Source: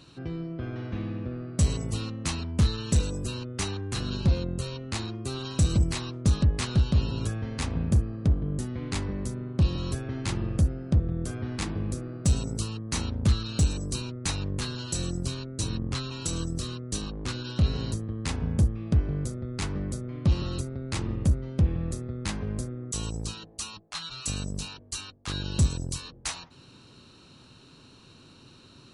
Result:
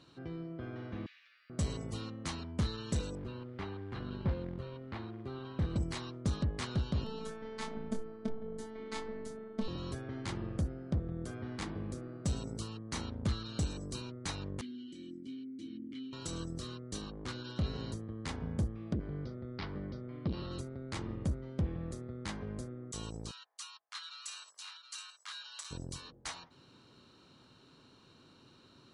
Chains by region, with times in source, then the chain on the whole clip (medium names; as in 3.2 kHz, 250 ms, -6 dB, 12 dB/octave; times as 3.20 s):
1.06–1.50 s: Chebyshev high-pass 2 kHz, order 3 + tilt EQ +4 dB/octave
3.15–5.76 s: short-mantissa float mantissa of 2-bit + distance through air 380 m
7.04–9.68 s: peaking EQ 730 Hz +3 dB 2.9 oct + robot voice 221 Hz + doubling 25 ms -5 dB
14.61–16.13 s: vowel filter i + treble shelf 8.4 kHz +11.5 dB + small resonant body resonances 240/340/870/3000 Hz, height 9 dB
18.93–20.51 s: steep low-pass 5.3 kHz 72 dB/octave + transformer saturation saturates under 160 Hz
23.31–25.71 s: high-pass 1.1 kHz 24 dB/octave + delay 724 ms -8.5 dB
whole clip: low-pass 3.4 kHz 6 dB/octave; bass shelf 150 Hz -9 dB; band-stop 2.6 kHz, Q 11; trim -5 dB